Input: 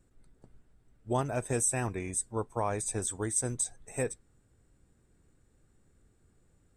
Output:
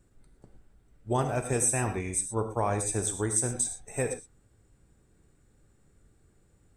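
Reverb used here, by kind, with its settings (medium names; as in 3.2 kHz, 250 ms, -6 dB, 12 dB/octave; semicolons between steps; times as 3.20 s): gated-style reverb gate 140 ms flat, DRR 6 dB; trim +2.5 dB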